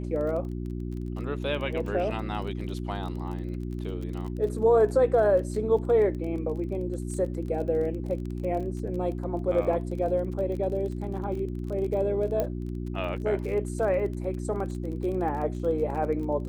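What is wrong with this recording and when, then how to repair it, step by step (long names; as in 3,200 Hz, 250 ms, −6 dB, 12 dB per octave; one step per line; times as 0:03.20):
surface crackle 28 per second −35 dBFS
mains hum 60 Hz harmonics 6 −33 dBFS
0:12.40: click −15 dBFS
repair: click removal
hum removal 60 Hz, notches 6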